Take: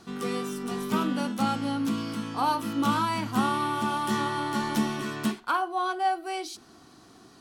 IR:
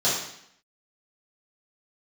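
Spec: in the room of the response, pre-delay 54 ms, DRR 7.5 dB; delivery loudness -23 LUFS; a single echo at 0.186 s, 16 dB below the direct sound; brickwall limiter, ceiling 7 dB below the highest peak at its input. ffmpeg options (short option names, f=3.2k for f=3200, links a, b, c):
-filter_complex "[0:a]alimiter=limit=-20.5dB:level=0:latency=1,aecho=1:1:186:0.158,asplit=2[a][b];[1:a]atrim=start_sample=2205,adelay=54[c];[b][c]afir=irnorm=-1:irlink=0,volume=-22dB[d];[a][d]amix=inputs=2:normalize=0,volume=6dB"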